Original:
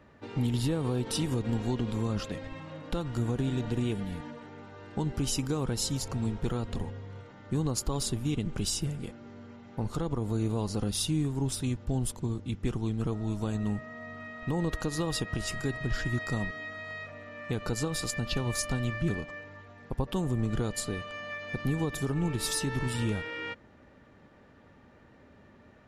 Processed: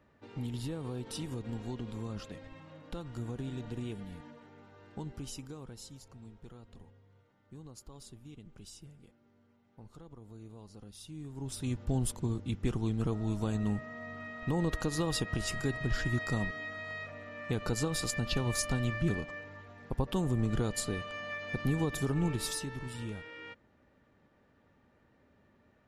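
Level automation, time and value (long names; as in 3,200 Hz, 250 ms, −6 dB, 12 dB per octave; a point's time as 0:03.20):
0:04.91 −9 dB
0:06.06 −20 dB
0:11.00 −20 dB
0:11.43 −10 dB
0:11.79 −1 dB
0:22.28 −1 dB
0:22.78 −10 dB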